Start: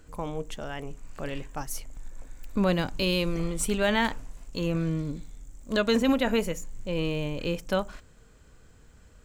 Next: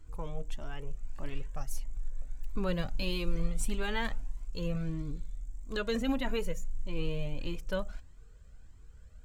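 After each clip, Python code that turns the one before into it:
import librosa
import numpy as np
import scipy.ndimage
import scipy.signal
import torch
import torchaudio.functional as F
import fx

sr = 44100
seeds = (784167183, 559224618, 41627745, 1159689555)

y = fx.low_shelf(x, sr, hz=100.0, db=10.5)
y = fx.comb_cascade(y, sr, direction='rising', hz=1.6)
y = y * 10.0 ** (-4.5 / 20.0)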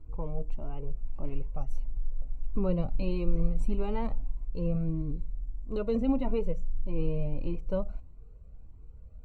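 y = np.convolve(x, np.full(26, 1.0 / 26))[:len(x)]
y = y * 10.0 ** (4.5 / 20.0)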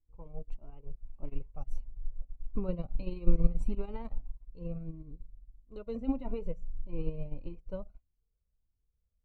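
y = fx.upward_expand(x, sr, threshold_db=-41.0, expansion=2.5)
y = y * 10.0 ** (4.5 / 20.0)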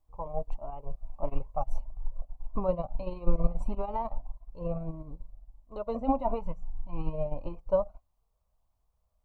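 y = fx.spec_box(x, sr, start_s=6.39, length_s=0.74, low_hz=330.0, high_hz=670.0, gain_db=-12)
y = fx.rider(y, sr, range_db=5, speed_s=2.0)
y = fx.band_shelf(y, sr, hz=820.0, db=16.0, octaves=1.3)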